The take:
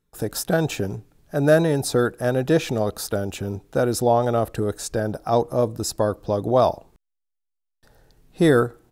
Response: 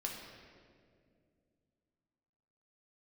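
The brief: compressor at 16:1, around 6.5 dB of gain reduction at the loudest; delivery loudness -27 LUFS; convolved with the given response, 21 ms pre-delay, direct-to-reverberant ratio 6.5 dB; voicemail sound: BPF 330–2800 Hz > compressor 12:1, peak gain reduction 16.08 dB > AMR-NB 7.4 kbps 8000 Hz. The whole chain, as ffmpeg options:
-filter_complex "[0:a]acompressor=threshold=-18dB:ratio=16,asplit=2[a][b];[1:a]atrim=start_sample=2205,adelay=21[c];[b][c]afir=irnorm=-1:irlink=0,volume=-7dB[d];[a][d]amix=inputs=2:normalize=0,highpass=330,lowpass=2.8k,acompressor=threshold=-33dB:ratio=12,volume=12.5dB" -ar 8000 -c:a libopencore_amrnb -b:a 7400

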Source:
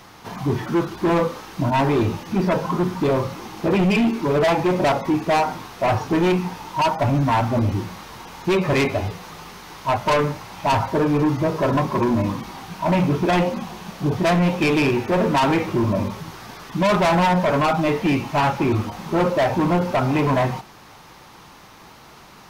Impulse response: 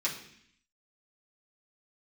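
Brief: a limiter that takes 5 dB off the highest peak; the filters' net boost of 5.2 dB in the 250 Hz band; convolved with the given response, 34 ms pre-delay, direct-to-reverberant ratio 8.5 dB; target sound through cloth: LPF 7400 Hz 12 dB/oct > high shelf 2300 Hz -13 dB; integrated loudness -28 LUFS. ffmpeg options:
-filter_complex "[0:a]equalizer=f=250:t=o:g=7.5,alimiter=limit=-11.5dB:level=0:latency=1,asplit=2[a][b];[1:a]atrim=start_sample=2205,adelay=34[c];[b][c]afir=irnorm=-1:irlink=0,volume=-14.5dB[d];[a][d]amix=inputs=2:normalize=0,lowpass=7.4k,highshelf=f=2.3k:g=-13,volume=-8.5dB"

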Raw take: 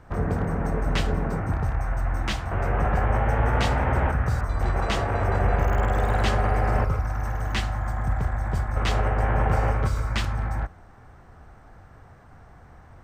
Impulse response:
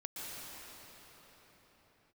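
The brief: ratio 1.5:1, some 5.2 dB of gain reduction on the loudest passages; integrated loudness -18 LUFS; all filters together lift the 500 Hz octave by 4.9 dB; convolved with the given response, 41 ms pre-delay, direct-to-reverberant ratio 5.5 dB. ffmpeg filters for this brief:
-filter_complex "[0:a]equalizer=f=500:t=o:g=6,acompressor=threshold=-31dB:ratio=1.5,asplit=2[a][b];[1:a]atrim=start_sample=2205,adelay=41[c];[b][c]afir=irnorm=-1:irlink=0,volume=-6.5dB[d];[a][d]amix=inputs=2:normalize=0,volume=9.5dB"

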